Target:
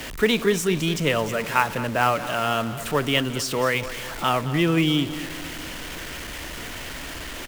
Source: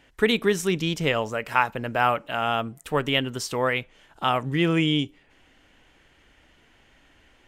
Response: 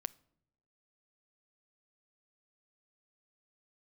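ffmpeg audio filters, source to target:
-filter_complex "[0:a]aeval=exprs='val(0)+0.5*0.0355*sgn(val(0))':channel_layout=same,bandreject=frequency=800:width=12,aecho=1:1:217|434|651|868|1085|1302:0.188|0.105|0.0591|0.0331|0.0185|0.0104,acrossover=split=100|550|4100[link_01][link_02][link_03][link_04];[link_03]acrusher=bits=4:mode=log:mix=0:aa=0.000001[link_05];[link_01][link_02][link_05][link_04]amix=inputs=4:normalize=0"

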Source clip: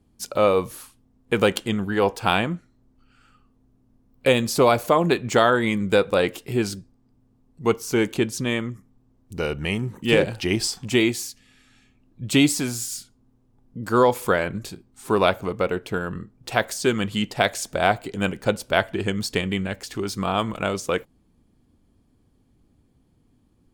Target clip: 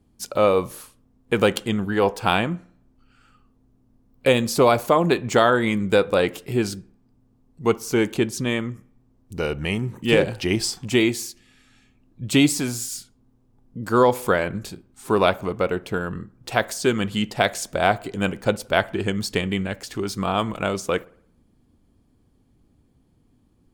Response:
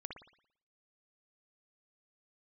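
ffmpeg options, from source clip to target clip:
-filter_complex "[0:a]asplit=2[link_01][link_02];[1:a]atrim=start_sample=2205,lowpass=1900[link_03];[link_02][link_03]afir=irnorm=-1:irlink=0,volume=-14.5dB[link_04];[link_01][link_04]amix=inputs=2:normalize=0"

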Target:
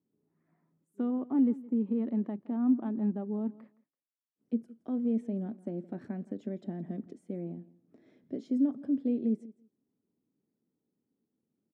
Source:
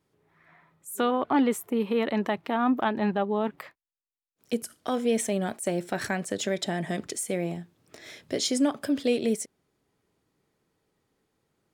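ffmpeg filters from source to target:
ffmpeg -i in.wav -filter_complex "[0:a]bandpass=frequency=240:width_type=q:width=2.9:csg=0,asplit=2[link_01][link_02];[link_02]aecho=0:1:167|334:0.1|0.015[link_03];[link_01][link_03]amix=inputs=2:normalize=0" out.wav

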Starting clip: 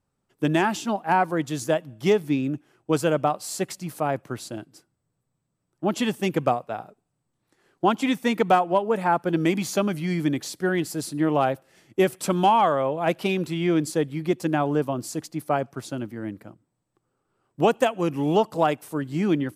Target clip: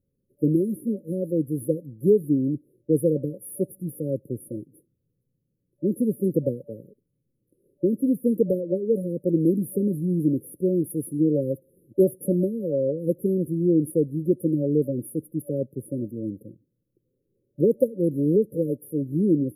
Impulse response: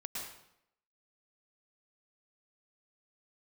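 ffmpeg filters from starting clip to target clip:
-af "afftfilt=real='re*(1-between(b*sr/4096,580,9700))':imag='im*(1-between(b*sr/4096,580,9700))':win_size=4096:overlap=0.75,volume=2dB"

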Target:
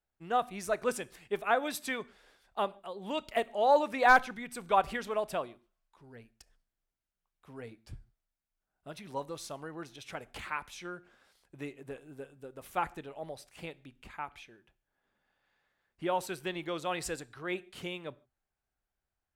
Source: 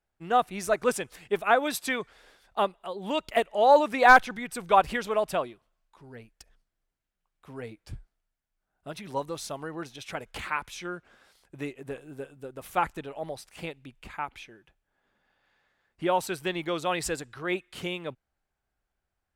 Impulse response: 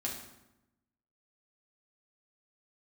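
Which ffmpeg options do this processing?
-filter_complex "[0:a]asplit=2[link_01][link_02];[1:a]atrim=start_sample=2205,afade=type=out:start_time=0.18:duration=0.01,atrim=end_sample=8379,adelay=26[link_03];[link_02][link_03]afir=irnorm=-1:irlink=0,volume=-21dB[link_04];[link_01][link_04]amix=inputs=2:normalize=0,volume=-6dB"

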